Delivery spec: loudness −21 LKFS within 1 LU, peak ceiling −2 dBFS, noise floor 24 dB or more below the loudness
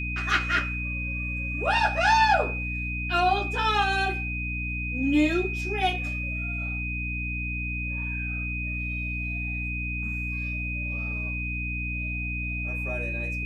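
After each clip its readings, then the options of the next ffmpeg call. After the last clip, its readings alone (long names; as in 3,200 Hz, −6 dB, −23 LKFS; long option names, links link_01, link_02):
mains hum 60 Hz; hum harmonics up to 300 Hz; level of the hum −30 dBFS; interfering tone 2,500 Hz; level of the tone −31 dBFS; integrated loudness −27.0 LKFS; sample peak −10.0 dBFS; target loudness −21.0 LKFS
→ -af "bandreject=frequency=60:width_type=h:width=6,bandreject=frequency=120:width_type=h:width=6,bandreject=frequency=180:width_type=h:width=6,bandreject=frequency=240:width_type=h:width=6,bandreject=frequency=300:width_type=h:width=6"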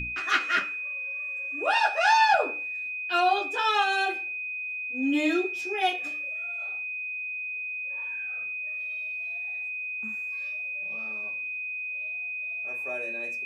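mains hum none found; interfering tone 2,500 Hz; level of the tone −31 dBFS
→ -af "bandreject=frequency=2500:width=30"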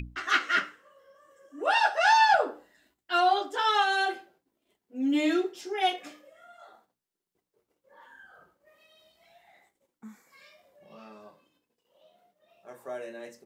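interfering tone none found; integrated loudness −25.5 LKFS; sample peak −11.0 dBFS; target loudness −21.0 LKFS
→ -af "volume=4.5dB"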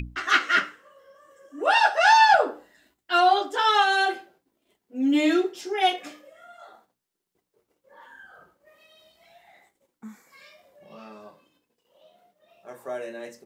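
integrated loudness −21.0 LKFS; sample peak −6.5 dBFS; background noise floor −81 dBFS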